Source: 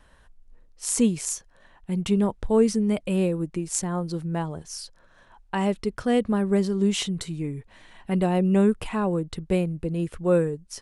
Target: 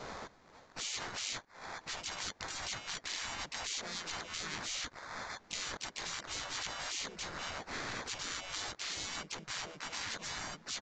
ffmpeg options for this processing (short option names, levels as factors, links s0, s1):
-filter_complex "[0:a]highpass=640,aemphasis=mode=production:type=75fm,acrusher=samples=17:mix=1:aa=0.000001,adynamicequalizer=threshold=0.00708:dfrequency=1500:dqfactor=6.2:tfrequency=1500:tqfactor=6.2:attack=5:release=100:ratio=0.375:range=2.5:mode=boostabove:tftype=bell,acompressor=threshold=0.0141:ratio=6,afftfilt=real='re*lt(hypot(re,im),0.00891)':imag='im*lt(hypot(re,im),0.00891)':win_size=1024:overlap=0.75,asplit=3[s0][s1][s2];[s1]asetrate=52444,aresample=44100,atempo=0.840896,volume=0.708[s3];[s2]asetrate=58866,aresample=44100,atempo=0.749154,volume=0.708[s4];[s0][s3][s4]amix=inputs=3:normalize=0,aresample=16000,aresample=44100,volume=3.55"